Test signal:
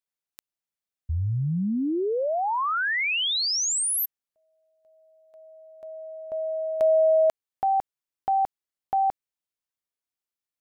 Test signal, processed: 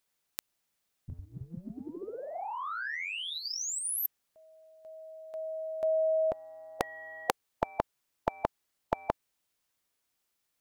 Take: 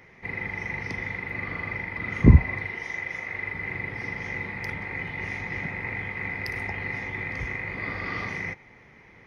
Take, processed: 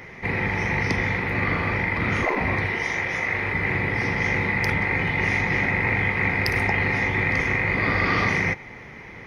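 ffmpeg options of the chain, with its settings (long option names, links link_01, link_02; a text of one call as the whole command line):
ffmpeg -i in.wav -af "acontrast=38,afftfilt=real='re*lt(hypot(re,im),0.355)':imag='im*lt(hypot(re,im),0.355)':win_size=1024:overlap=0.75,volume=6dB" out.wav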